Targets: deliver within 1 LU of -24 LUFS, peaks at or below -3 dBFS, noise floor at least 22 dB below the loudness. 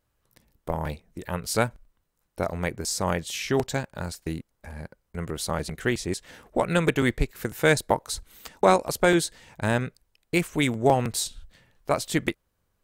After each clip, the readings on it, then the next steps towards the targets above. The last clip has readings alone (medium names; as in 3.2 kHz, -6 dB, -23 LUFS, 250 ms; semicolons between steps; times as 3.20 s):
loudness -26.5 LUFS; peak level -4.5 dBFS; loudness target -24.0 LUFS
-> trim +2.5 dB; peak limiter -3 dBFS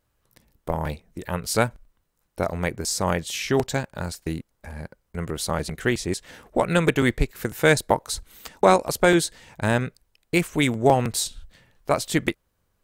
loudness -24.0 LUFS; peak level -3.0 dBFS; noise floor -72 dBFS